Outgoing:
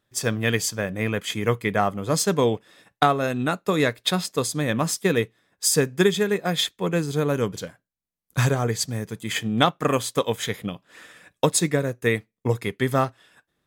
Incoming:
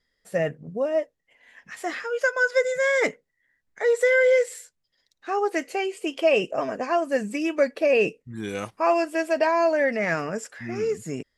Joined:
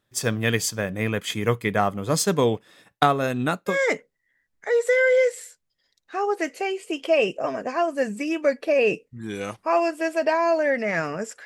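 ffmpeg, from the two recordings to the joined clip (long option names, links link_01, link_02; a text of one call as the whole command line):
ffmpeg -i cue0.wav -i cue1.wav -filter_complex "[0:a]apad=whole_dur=11.45,atrim=end=11.45,atrim=end=3.78,asetpts=PTS-STARTPTS[link_01];[1:a]atrim=start=2.8:end=10.59,asetpts=PTS-STARTPTS[link_02];[link_01][link_02]acrossfade=duration=0.12:curve1=tri:curve2=tri" out.wav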